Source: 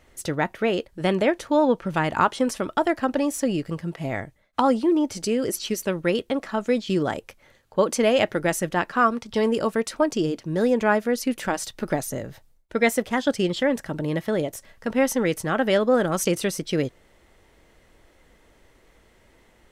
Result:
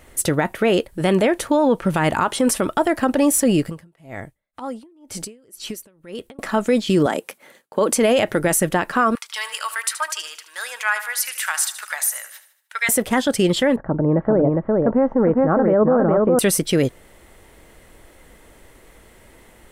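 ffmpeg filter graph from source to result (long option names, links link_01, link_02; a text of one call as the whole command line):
ffmpeg -i in.wav -filter_complex "[0:a]asettb=1/sr,asplit=3[link_01][link_02][link_03];[link_01]atrim=end=3.694[link_04];[link_02]atrim=start=3.69:end=6.39,asetpts=PTS-STARTPTS,afade=type=in:duration=0.004:curve=qsin,afade=type=out:start_time=2.696:duration=0.004:curve=qsin,acompressor=threshold=-34dB:ratio=6:attack=3.2:release=140:knee=1:detection=peak,aeval=exprs='val(0)*pow(10,-27*(0.5-0.5*cos(2*PI*2*n/s))/20)':channel_layout=same[link_05];[link_03]atrim=start=6.386[link_06];[link_04][link_05]acrossfade=duration=0.004:curve1=hsin:curve2=qsin[link_07];[link_07][link_06]acrossfade=duration=0.004:curve1=qsin:curve2=hsin,asettb=1/sr,asplit=3[link_08][link_09][link_10];[link_08]atrim=end=7.064[link_11];[link_09]atrim=start=7.06:end=7.92,asetpts=PTS-STARTPTS,afade=type=in:duration=0.004:curve=qsin,afade=type=out:start_time=0.856:duration=0.004:curve=qsin,highpass=frequency=190:width=0.5412,highpass=frequency=190:width=1.3066,agate=range=-33dB:threshold=-59dB:ratio=3:release=100:detection=peak[link_12];[link_10]atrim=start=7.916[link_13];[link_11][link_12]acrossfade=duration=0.004:curve1=hsin:curve2=qsin[link_14];[link_14][link_13]acrossfade=duration=0.004:curve1=qsin:curve2=hsin,asettb=1/sr,asplit=3[link_15][link_16][link_17];[link_15]atrim=end=9.154[link_18];[link_16]atrim=start=9.15:end=12.89,asetpts=PTS-STARTPTS,afade=type=in:duration=0.004:curve=qsin,afade=type=out:start_time=3.736:duration=0.004:curve=qsin,highpass=frequency=1200:width=0.5412,highpass=frequency=1200:width=1.3066,aecho=1:1:76|152|228|304|380:0.224|0.103|0.0474|0.0218|0.01,atrim=end_sample=164934[link_19];[link_17]atrim=start=12.886[link_20];[link_18][link_19]acrossfade=duration=0.004:curve1=hsin:curve2=qsin[link_21];[link_21][link_20]acrossfade=duration=0.004:curve1=qsin:curve2=hsin,asettb=1/sr,asplit=3[link_22][link_23][link_24];[link_22]atrim=end=13.764[link_25];[link_23]atrim=start=13.76:end=16.39,asetpts=PTS-STARTPTS,afade=type=in:duration=0.004:curve=qsin,afade=type=out:start_time=2.626:duration=0.004:curve=qsin,lowpass=frequency=1200:width=0.5412,lowpass=frequency=1200:width=1.3066,aecho=1:1:407:0.708,atrim=end_sample=115983[link_26];[link_24]atrim=start=16.386[link_27];[link_25][link_26]acrossfade=duration=0.004:curve1=hsin:curve2=qsin[link_28];[link_28][link_27]acrossfade=duration=0.004:curve1=qsin:curve2=hsin,highshelf=frequency=7400:width_type=q:width=1.5:gain=6,alimiter=limit=-17dB:level=0:latency=1:release=45,volume=8.5dB" out.wav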